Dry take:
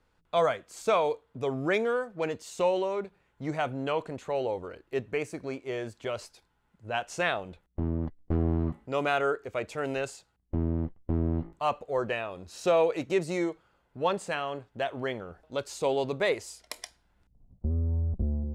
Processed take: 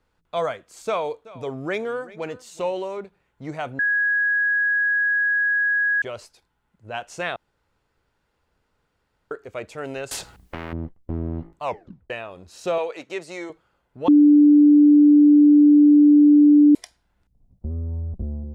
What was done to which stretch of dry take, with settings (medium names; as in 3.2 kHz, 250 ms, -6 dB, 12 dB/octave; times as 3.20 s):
0.87–2.98 s: delay 378 ms -19 dB
3.79–6.02 s: bleep 1.66 kHz -17.5 dBFS
7.36–9.31 s: room tone
10.11–10.73 s: spectrum-flattening compressor 4:1
11.63 s: tape stop 0.47 s
12.78–13.50 s: frequency weighting A
14.08–16.75 s: bleep 294 Hz -9 dBFS